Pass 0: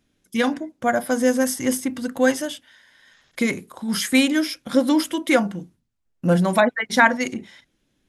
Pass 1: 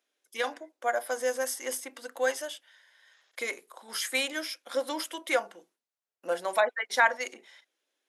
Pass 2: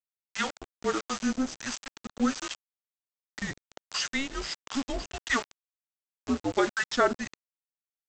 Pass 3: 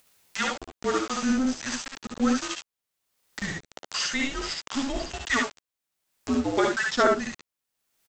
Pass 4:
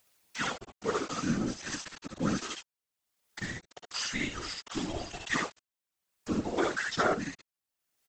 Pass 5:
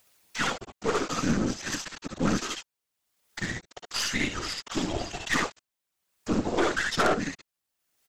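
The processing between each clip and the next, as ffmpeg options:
-af "highpass=f=450:w=0.5412,highpass=f=450:w=1.3066,volume=-7dB"
-filter_complex "[0:a]afreqshift=-270,aresample=16000,acrusher=bits=5:mix=0:aa=0.000001,aresample=44100,acrossover=split=700[a][b];[a]aeval=exprs='val(0)*(1-0.7/2+0.7/2*cos(2*PI*1.4*n/s))':c=same[c];[b]aeval=exprs='val(0)*(1-0.7/2-0.7/2*cos(2*PI*1.4*n/s))':c=same[d];[c][d]amix=inputs=2:normalize=0,volume=3.5dB"
-filter_complex "[0:a]asplit=2[a][b];[b]acompressor=mode=upward:threshold=-29dB:ratio=2.5,volume=-3dB[c];[a][c]amix=inputs=2:normalize=0,aecho=1:1:59|71:0.501|0.631,volume=-3.5dB"
-af "afftfilt=real='hypot(re,im)*cos(2*PI*random(0))':imag='hypot(re,im)*sin(2*PI*random(1))':win_size=512:overlap=0.75"
-af "aeval=exprs='0.237*(cos(1*acos(clip(val(0)/0.237,-1,1)))-cos(1*PI/2))+0.0376*(cos(5*acos(clip(val(0)/0.237,-1,1)))-cos(5*PI/2))+0.0531*(cos(6*acos(clip(val(0)/0.237,-1,1)))-cos(6*PI/2))+0.0668*(cos(8*acos(clip(val(0)/0.237,-1,1)))-cos(8*PI/2))':c=same"

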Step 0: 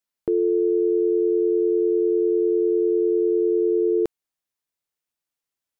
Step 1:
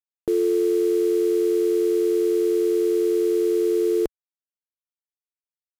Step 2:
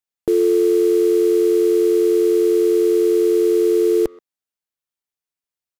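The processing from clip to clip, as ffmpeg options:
-af "acrusher=bits=5:mix=0:aa=0.5,asubboost=boost=3:cutoff=66"
-filter_complex "[0:a]asplit=2[a][b];[b]adelay=130,highpass=300,lowpass=3.4k,asoftclip=type=hard:threshold=-23dB,volume=-22dB[c];[a][c]amix=inputs=2:normalize=0,volume=5dB"

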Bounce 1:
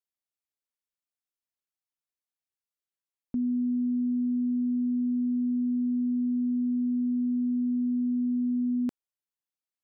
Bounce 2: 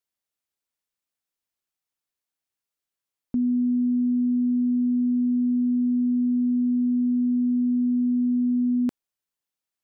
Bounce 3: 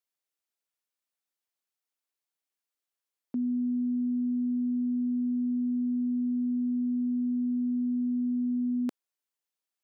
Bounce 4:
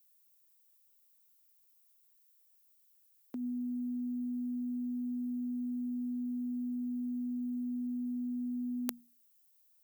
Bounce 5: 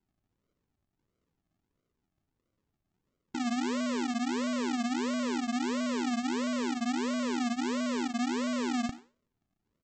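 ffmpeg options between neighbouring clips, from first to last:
-af "acontrast=23"
-af "highpass=270,volume=-2.5dB"
-af "aemphasis=mode=production:type=riaa,bandreject=f=60:t=h:w=6,bandreject=f=120:t=h:w=6,bandreject=f=180:t=h:w=6,bandreject=f=240:t=h:w=6"
-filter_complex "[0:a]aresample=16000,acrusher=samples=26:mix=1:aa=0.000001:lfo=1:lforange=15.6:lforate=1.5,aresample=44100,asplit=2[a][b];[b]adelay=90,highpass=300,lowpass=3.4k,asoftclip=type=hard:threshold=-38dB,volume=-17dB[c];[a][c]amix=inputs=2:normalize=0,volume=5dB"

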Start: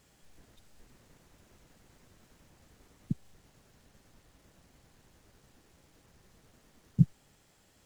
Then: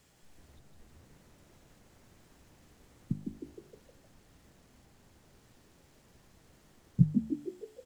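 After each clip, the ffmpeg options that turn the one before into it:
-filter_complex "[0:a]bandreject=f=50.59:t=h:w=4,bandreject=f=101.18:t=h:w=4,bandreject=f=151.77:t=h:w=4,bandreject=f=202.36:t=h:w=4,bandreject=f=252.95:t=h:w=4,bandreject=f=303.54:t=h:w=4,bandreject=f=354.13:t=h:w=4,bandreject=f=404.72:t=h:w=4,bandreject=f=455.31:t=h:w=4,bandreject=f=505.9:t=h:w=4,bandreject=f=556.49:t=h:w=4,bandreject=f=607.08:t=h:w=4,bandreject=f=657.67:t=h:w=4,bandreject=f=708.26:t=h:w=4,bandreject=f=758.85:t=h:w=4,bandreject=f=809.44:t=h:w=4,bandreject=f=860.03:t=h:w=4,bandreject=f=910.62:t=h:w=4,bandreject=f=961.21:t=h:w=4,bandreject=f=1.0118k:t=h:w=4,bandreject=f=1.06239k:t=h:w=4,bandreject=f=1.11298k:t=h:w=4,bandreject=f=1.16357k:t=h:w=4,bandreject=f=1.21416k:t=h:w=4,bandreject=f=1.26475k:t=h:w=4,bandreject=f=1.31534k:t=h:w=4,bandreject=f=1.36593k:t=h:w=4,bandreject=f=1.41652k:t=h:w=4,bandreject=f=1.46711k:t=h:w=4,bandreject=f=1.5177k:t=h:w=4,bandreject=f=1.56829k:t=h:w=4,bandreject=f=1.61888k:t=h:w=4,bandreject=f=1.66947k:t=h:w=4,bandreject=f=1.72006k:t=h:w=4,acrossover=split=540|1400[a][b][c];[c]alimiter=level_in=35dB:limit=-24dB:level=0:latency=1:release=483,volume=-35dB[d];[a][b][d]amix=inputs=3:normalize=0,asplit=7[e][f][g][h][i][j][k];[f]adelay=155,afreqshift=70,volume=-6dB[l];[g]adelay=310,afreqshift=140,volume=-11.8dB[m];[h]adelay=465,afreqshift=210,volume=-17.7dB[n];[i]adelay=620,afreqshift=280,volume=-23.5dB[o];[j]adelay=775,afreqshift=350,volume=-29.4dB[p];[k]adelay=930,afreqshift=420,volume=-35.2dB[q];[e][l][m][n][o][p][q]amix=inputs=7:normalize=0"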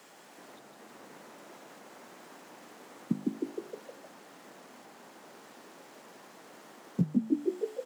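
-af "highpass=f=210:w=0.5412,highpass=f=210:w=1.3066,equalizer=f=950:w=0.55:g=8.5,alimiter=limit=-24dB:level=0:latency=1:release=473,volume=8dB"

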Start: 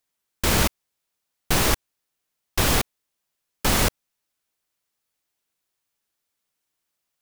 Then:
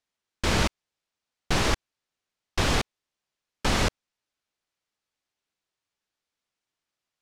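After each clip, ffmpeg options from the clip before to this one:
-af "lowpass=6k,volume=-2.5dB"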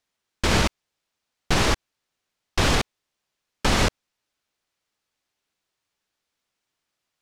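-af "alimiter=limit=-15dB:level=0:latency=1:release=71,volume=5.5dB"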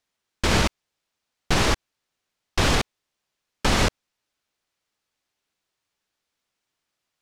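-af anull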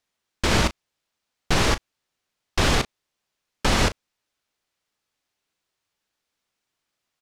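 -filter_complex "[0:a]asplit=2[a][b];[b]adelay=35,volume=-13dB[c];[a][c]amix=inputs=2:normalize=0"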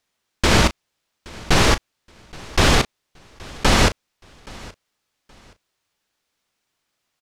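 -af "aecho=1:1:823|1646:0.075|0.0195,volume=5dB"

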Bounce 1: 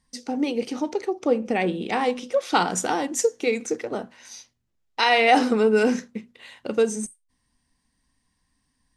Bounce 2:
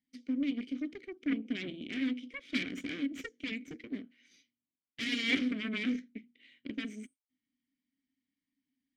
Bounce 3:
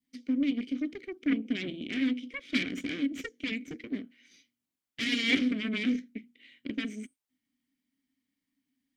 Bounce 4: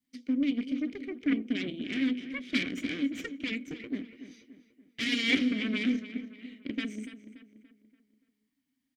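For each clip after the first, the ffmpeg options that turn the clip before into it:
-filter_complex "[0:a]aeval=exprs='0.473*(cos(1*acos(clip(val(0)/0.473,-1,1)))-cos(1*PI/2))+0.211*(cos(3*acos(clip(val(0)/0.473,-1,1)))-cos(3*PI/2))+0.0473*(cos(8*acos(clip(val(0)/0.473,-1,1)))-cos(8*PI/2))':c=same,aeval=exprs='clip(val(0),-1,0.188)':c=same,asplit=3[a][b][c];[a]bandpass=f=270:t=q:w=8,volume=0dB[d];[b]bandpass=f=2.29k:t=q:w=8,volume=-6dB[e];[c]bandpass=f=3.01k:t=q:w=8,volume=-9dB[f];[d][e][f]amix=inputs=3:normalize=0,volume=6.5dB"
-af "adynamicequalizer=threshold=0.00355:dfrequency=1300:dqfactor=0.89:tfrequency=1300:tqfactor=0.89:attack=5:release=100:ratio=0.375:range=2.5:mode=cutabove:tftype=bell,volume=4.5dB"
-filter_complex "[0:a]asplit=2[a][b];[b]adelay=288,lowpass=f=3.1k:p=1,volume=-12dB,asplit=2[c][d];[d]adelay=288,lowpass=f=3.1k:p=1,volume=0.46,asplit=2[e][f];[f]adelay=288,lowpass=f=3.1k:p=1,volume=0.46,asplit=2[g][h];[h]adelay=288,lowpass=f=3.1k:p=1,volume=0.46,asplit=2[i][j];[j]adelay=288,lowpass=f=3.1k:p=1,volume=0.46[k];[a][c][e][g][i][k]amix=inputs=6:normalize=0"

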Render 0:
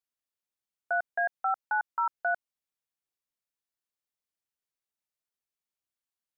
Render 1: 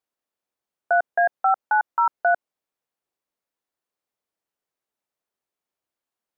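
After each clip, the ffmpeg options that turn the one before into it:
-af "equalizer=f=530:w=0.34:g=11.5"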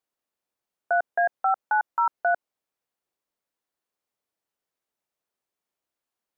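-af "alimiter=limit=-15dB:level=0:latency=1:release=18"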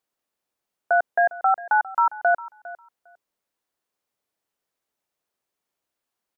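-af "aecho=1:1:404|808:0.126|0.0189,volume=3.5dB"

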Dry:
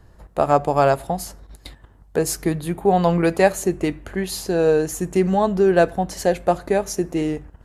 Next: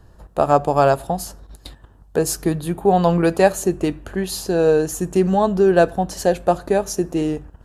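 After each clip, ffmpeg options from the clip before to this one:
-af "equalizer=f=2.1k:w=5.7:g=-10,volume=1.5dB"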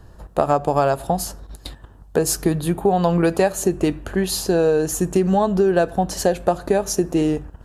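-af "acompressor=threshold=-17dB:ratio=6,volume=3.5dB"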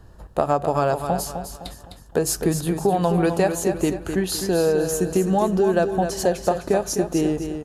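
-af "aecho=1:1:256|512|768|1024:0.398|0.147|0.0545|0.0202,volume=-2.5dB"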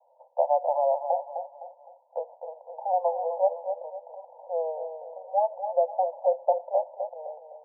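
-af "asuperpass=centerf=700:order=20:qfactor=1.5,volume=-1.5dB"

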